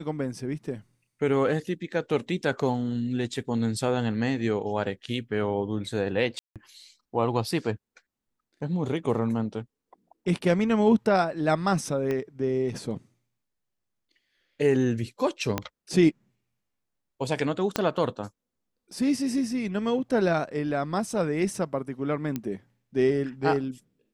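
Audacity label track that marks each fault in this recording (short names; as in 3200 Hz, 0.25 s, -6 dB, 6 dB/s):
6.390000	6.560000	gap 0.167 s
12.110000	12.110000	pop -18 dBFS
15.580000	15.580000	pop -11 dBFS
17.760000	17.760000	pop -9 dBFS
22.360000	22.360000	pop -16 dBFS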